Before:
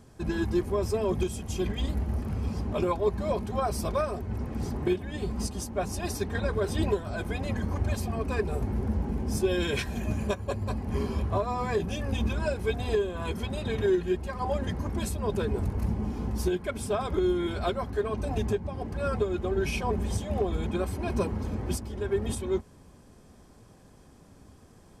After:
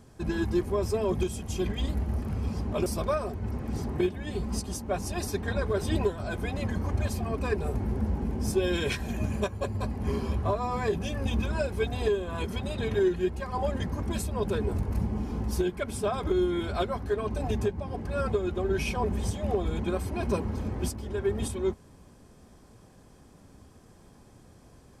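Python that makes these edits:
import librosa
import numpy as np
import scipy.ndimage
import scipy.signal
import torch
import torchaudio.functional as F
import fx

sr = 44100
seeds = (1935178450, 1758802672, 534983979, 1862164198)

y = fx.edit(x, sr, fx.cut(start_s=2.86, length_s=0.87), tone=tone)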